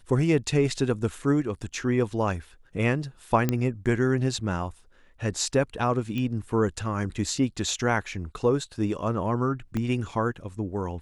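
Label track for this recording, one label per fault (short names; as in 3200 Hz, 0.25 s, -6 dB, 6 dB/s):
3.490000	3.490000	pop -10 dBFS
6.180000	6.180000	pop -19 dBFS
9.770000	9.770000	pop -17 dBFS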